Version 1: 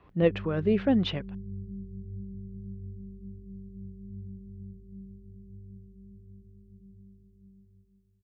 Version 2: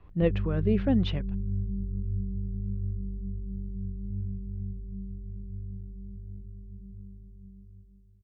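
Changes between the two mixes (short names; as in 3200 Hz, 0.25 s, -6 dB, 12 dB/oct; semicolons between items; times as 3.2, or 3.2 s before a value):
speech -4.0 dB; master: remove HPF 240 Hz 6 dB/oct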